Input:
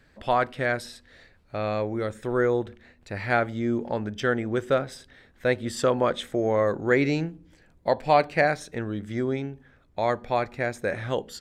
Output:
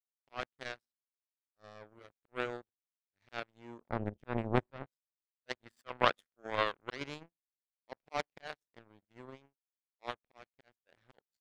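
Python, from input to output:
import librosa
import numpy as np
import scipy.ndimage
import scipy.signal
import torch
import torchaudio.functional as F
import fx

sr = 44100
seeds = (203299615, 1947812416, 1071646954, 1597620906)

y = fx.auto_swell(x, sr, attack_ms=119.0)
y = fx.riaa(y, sr, side='playback', at=(3.89, 4.86))
y = fx.spec_box(y, sr, start_s=5.5, length_s=1.5, low_hz=980.0, high_hz=2100.0, gain_db=8)
y = fx.power_curve(y, sr, exponent=3.0)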